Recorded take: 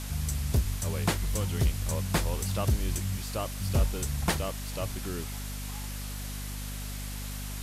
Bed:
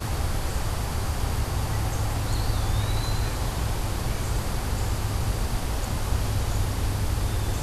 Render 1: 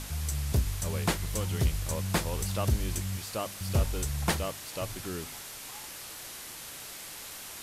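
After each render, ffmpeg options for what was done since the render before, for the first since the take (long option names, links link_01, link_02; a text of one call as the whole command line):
ffmpeg -i in.wav -af "bandreject=frequency=50:width_type=h:width=4,bandreject=frequency=100:width_type=h:width=4,bandreject=frequency=150:width_type=h:width=4,bandreject=frequency=200:width_type=h:width=4,bandreject=frequency=250:width_type=h:width=4" out.wav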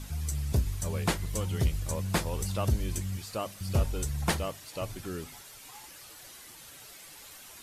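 ffmpeg -i in.wav -af "afftdn=noise_reduction=9:noise_floor=-44" out.wav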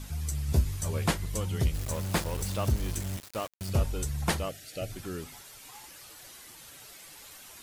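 ffmpeg -i in.wav -filter_complex "[0:a]asettb=1/sr,asplit=3[link_01][link_02][link_03];[link_01]atrim=end=0.474[link_04];[link_02]atrim=start=0.47:end=1.11,asetpts=PTS-STARTPTS,afade=type=in:duration=0.004:curve=qsin,afade=type=out:start_time=0.636:duration=0.004:curve=qsin,asplit=2[link_05][link_06];[link_06]adelay=13,volume=-4.5dB[link_07];[link_05][link_07]amix=inputs=2:normalize=0,atrim=end_sample=28224[link_08];[link_03]atrim=start=1.106[link_09];[link_04][link_08]acrossfade=duration=0.004:curve1=hsin:curve2=qsin[link_10];[link_10][link_09]acrossfade=duration=0.004:curve1=qsin:curve2=hsin,asettb=1/sr,asplit=3[link_11][link_12][link_13];[link_11]atrim=end=1.744[link_14];[link_12]atrim=start=1.74:end=3.7,asetpts=PTS-STARTPTS,afade=type=in:duration=0.004:curve=qsin,afade=type=out:start_time=1.956:duration=0.004:curve=qsin,aeval=exprs='val(0)*gte(abs(val(0)),0.0158)':channel_layout=same[link_15];[link_13]atrim=start=3.696[link_16];[link_14][link_15]acrossfade=duration=0.004:curve1=hsin:curve2=qsin[link_17];[link_17][link_16]acrossfade=duration=0.004:curve1=qsin:curve2=hsin,asettb=1/sr,asplit=3[link_18][link_19][link_20];[link_18]atrim=end=4.494[link_21];[link_19]atrim=start=4.49:end=4.92,asetpts=PTS-STARTPTS,afade=type=in:duration=0.004:curve=qsin,afade=type=out:start_time=0.426:duration=0.004:curve=qsin,asuperstop=centerf=1000:order=8:qfactor=2[link_22];[link_20]atrim=start=4.916[link_23];[link_21][link_22]acrossfade=duration=0.004:curve1=hsin:curve2=qsin[link_24];[link_24][link_23]acrossfade=duration=0.004:curve1=qsin:curve2=hsin" out.wav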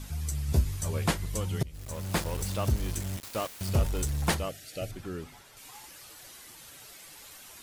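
ffmpeg -i in.wav -filter_complex "[0:a]asettb=1/sr,asplit=3[link_01][link_02][link_03];[link_01]atrim=end=3.234[link_04];[link_02]atrim=start=3.23:end=4.35,asetpts=PTS-STARTPTS,afade=type=in:duration=0.004:curve=qsin,afade=type=out:start_time=1.116:duration=0.004:curve=qsin,aeval=exprs='val(0)+0.5*0.0178*sgn(val(0))':channel_layout=same[link_05];[link_03]atrim=start=4.346[link_06];[link_04][link_05]acrossfade=duration=0.004:curve1=hsin:curve2=qsin[link_07];[link_07][link_06]acrossfade=duration=0.004:curve1=qsin:curve2=hsin,asettb=1/sr,asplit=3[link_08][link_09][link_10];[link_08]atrim=end=4.914[link_11];[link_09]atrim=start=4.91:end=5.57,asetpts=PTS-STARTPTS,afade=type=in:duration=0.004:curve=qsin,afade=type=out:start_time=0.656:duration=0.004:curve=qsin,highshelf=frequency=4100:gain=-10[link_12];[link_10]atrim=start=5.566[link_13];[link_11][link_12]acrossfade=duration=0.004:curve1=hsin:curve2=qsin[link_14];[link_14][link_13]acrossfade=duration=0.004:curve1=qsin:curve2=hsin,asplit=2[link_15][link_16];[link_15]atrim=end=1.63,asetpts=PTS-STARTPTS,afade=type=out:start_time=1.626:duration=0.004:curve=hsin:silence=0.0707946[link_17];[link_16]atrim=start=1.63,asetpts=PTS-STARTPTS,afade=type=in:duration=0.57:silence=0.0707946[link_18];[link_17][link_18]concat=n=2:v=0:a=1" out.wav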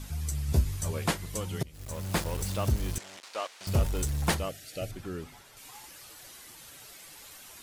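ffmpeg -i in.wav -filter_complex "[0:a]asettb=1/sr,asplit=3[link_01][link_02][link_03];[link_01]atrim=end=0.924[link_04];[link_02]atrim=start=0.92:end=1.8,asetpts=PTS-STARTPTS,afade=type=in:duration=0.004:curve=qsin,afade=type=out:start_time=0.876:duration=0.004:curve=qsin,lowshelf=frequency=81:gain=-11[link_05];[link_03]atrim=start=1.796[link_06];[link_04][link_05]acrossfade=duration=0.004:curve1=hsin:curve2=qsin[link_07];[link_07][link_06]acrossfade=duration=0.004:curve1=qsin:curve2=hsin,asettb=1/sr,asplit=3[link_08][link_09][link_10];[link_08]atrim=end=2.984[link_11];[link_09]atrim=start=2.98:end=3.67,asetpts=PTS-STARTPTS,afade=type=in:duration=0.004:curve=qsin,afade=type=out:start_time=0.686:duration=0.004:curve=qsin,highpass=560,lowpass=6000[link_12];[link_10]atrim=start=3.666[link_13];[link_11][link_12]acrossfade=duration=0.004:curve1=hsin:curve2=qsin[link_14];[link_14][link_13]acrossfade=duration=0.004:curve1=qsin:curve2=hsin" out.wav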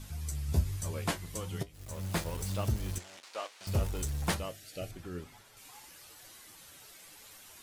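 ffmpeg -i in.wav -af "flanger=delay=9.1:depth=3.2:regen=62:speed=1.1:shape=sinusoidal" out.wav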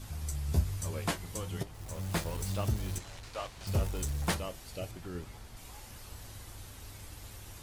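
ffmpeg -i in.wav -i bed.wav -filter_complex "[1:a]volume=-23dB[link_01];[0:a][link_01]amix=inputs=2:normalize=0" out.wav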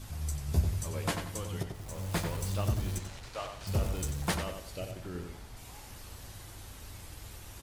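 ffmpeg -i in.wav -filter_complex "[0:a]asplit=2[link_01][link_02];[link_02]adelay=92,lowpass=frequency=4200:poles=1,volume=-6dB,asplit=2[link_03][link_04];[link_04]adelay=92,lowpass=frequency=4200:poles=1,volume=0.35,asplit=2[link_05][link_06];[link_06]adelay=92,lowpass=frequency=4200:poles=1,volume=0.35,asplit=2[link_07][link_08];[link_08]adelay=92,lowpass=frequency=4200:poles=1,volume=0.35[link_09];[link_01][link_03][link_05][link_07][link_09]amix=inputs=5:normalize=0" out.wav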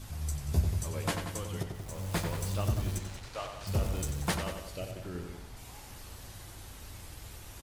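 ffmpeg -i in.wav -af "aecho=1:1:184:0.158" out.wav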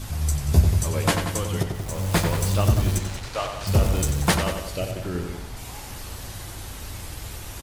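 ffmpeg -i in.wav -af "volume=11dB" out.wav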